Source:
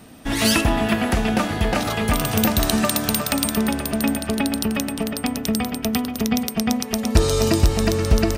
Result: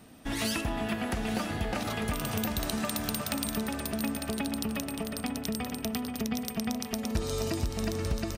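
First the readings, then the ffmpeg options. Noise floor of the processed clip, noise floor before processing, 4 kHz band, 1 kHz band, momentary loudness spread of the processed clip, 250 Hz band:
-40 dBFS, -32 dBFS, -11.0 dB, -11.5 dB, 3 LU, -11.0 dB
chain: -filter_complex "[0:a]acompressor=threshold=0.1:ratio=3,asplit=2[s0][s1];[s1]aecho=0:1:900|1800:0.299|0.0537[s2];[s0][s2]amix=inputs=2:normalize=0,volume=0.376"

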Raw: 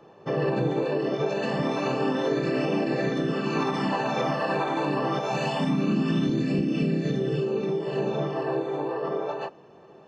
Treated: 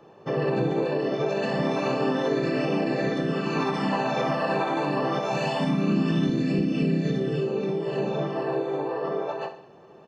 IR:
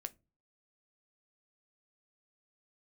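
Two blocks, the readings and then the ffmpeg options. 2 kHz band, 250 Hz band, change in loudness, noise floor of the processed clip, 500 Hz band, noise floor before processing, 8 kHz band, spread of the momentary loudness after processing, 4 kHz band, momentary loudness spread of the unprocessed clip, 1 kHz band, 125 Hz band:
+0.5 dB, +0.5 dB, +0.5 dB, -50 dBFS, +0.5 dB, -51 dBFS, no reading, 4 LU, +0.5 dB, 4 LU, +0.5 dB, +0.5 dB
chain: -af "aecho=1:1:66|132|198|264|330:0.282|0.13|0.0596|0.0274|0.0126"

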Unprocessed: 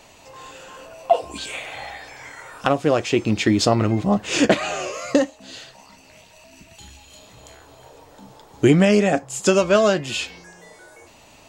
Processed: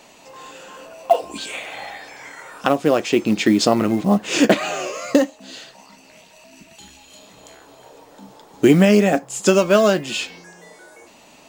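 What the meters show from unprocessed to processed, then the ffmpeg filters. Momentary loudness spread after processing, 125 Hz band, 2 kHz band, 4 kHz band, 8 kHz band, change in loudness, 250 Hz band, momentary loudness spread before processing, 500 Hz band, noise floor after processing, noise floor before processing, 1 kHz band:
21 LU, -1.0 dB, +1.0 dB, +1.0 dB, +1.0 dB, +2.0 dB, +3.0 dB, 22 LU, +1.5 dB, -49 dBFS, -50 dBFS, +1.0 dB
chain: -af "acrusher=bits=7:mode=log:mix=0:aa=0.000001,lowshelf=f=140:t=q:w=1.5:g=-9.5,volume=1.12"

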